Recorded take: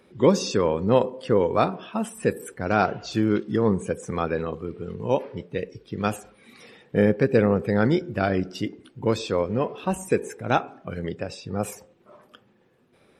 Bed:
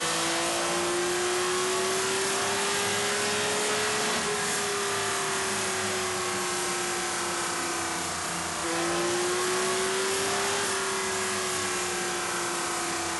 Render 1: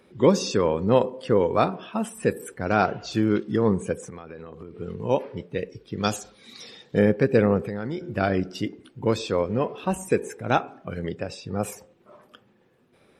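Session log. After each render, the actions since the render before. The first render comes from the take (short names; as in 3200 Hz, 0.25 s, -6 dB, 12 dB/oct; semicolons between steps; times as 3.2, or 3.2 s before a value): 4.04–4.8 compressor 12:1, threshold -35 dBFS; 6.03–6.99 band shelf 5000 Hz +12 dB 1.3 oct; 7.67–8.13 compressor 4:1, threshold -27 dBFS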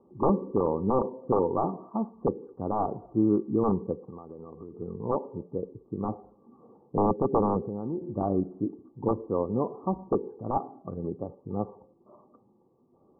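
wrapped overs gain 10.5 dB; rippled Chebyshev low-pass 1200 Hz, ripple 6 dB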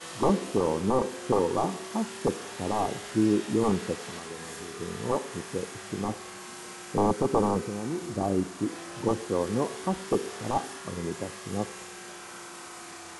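add bed -13.5 dB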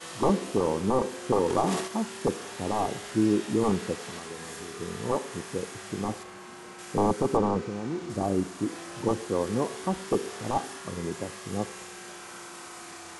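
1.46–1.88 transient shaper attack +6 dB, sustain +10 dB; 6.23–6.79 high shelf 3100 Hz -9.5 dB; 7.37–8.1 air absorption 85 m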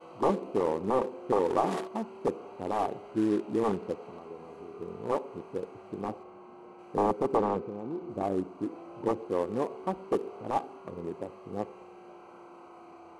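Wiener smoothing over 25 samples; tone controls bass -10 dB, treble -8 dB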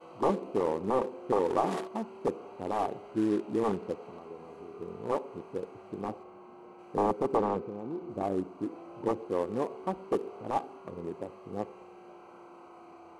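gain -1 dB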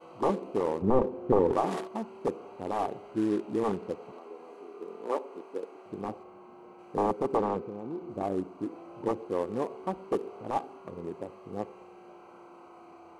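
0.82–1.53 tilt -3.5 dB/oct; 4.12–5.86 HPF 260 Hz 24 dB/oct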